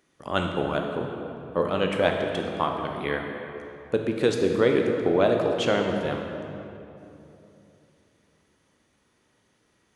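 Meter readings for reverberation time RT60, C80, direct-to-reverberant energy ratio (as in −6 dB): 3.0 s, 4.5 dB, 2.0 dB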